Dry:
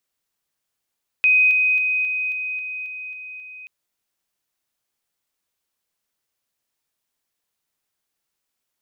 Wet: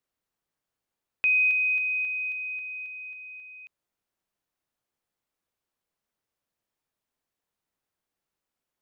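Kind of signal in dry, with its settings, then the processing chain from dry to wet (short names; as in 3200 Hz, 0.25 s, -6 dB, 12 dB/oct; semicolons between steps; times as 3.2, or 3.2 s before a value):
level ladder 2510 Hz -12 dBFS, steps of -3 dB, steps 9, 0.27 s 0.00 s
high shelf 2000 Hz -10.5 dB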